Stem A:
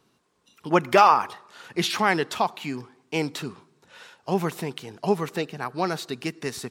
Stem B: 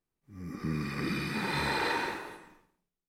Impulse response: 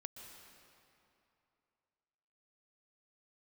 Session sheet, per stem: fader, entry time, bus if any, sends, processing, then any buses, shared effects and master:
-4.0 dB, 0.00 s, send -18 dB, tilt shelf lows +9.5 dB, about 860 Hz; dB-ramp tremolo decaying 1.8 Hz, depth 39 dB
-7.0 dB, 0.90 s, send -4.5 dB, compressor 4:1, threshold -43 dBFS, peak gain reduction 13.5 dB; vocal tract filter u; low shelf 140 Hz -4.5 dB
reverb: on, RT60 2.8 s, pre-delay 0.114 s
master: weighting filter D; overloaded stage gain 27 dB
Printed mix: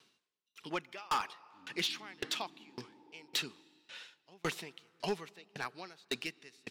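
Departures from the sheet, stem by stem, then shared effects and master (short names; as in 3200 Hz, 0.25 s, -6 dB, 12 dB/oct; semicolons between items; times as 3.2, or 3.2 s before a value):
stem A: missing tilt shelf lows +9.5 dB, about 860 Hz; stem B: entry 0.90 s -> 1.25 s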